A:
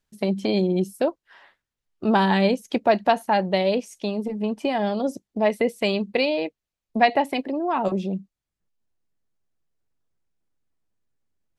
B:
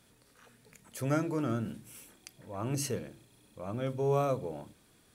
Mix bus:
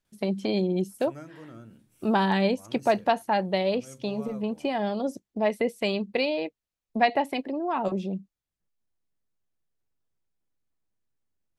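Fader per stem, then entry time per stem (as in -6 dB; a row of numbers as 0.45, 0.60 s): -4.0, -13.5 dB; 0.00, 0.05 s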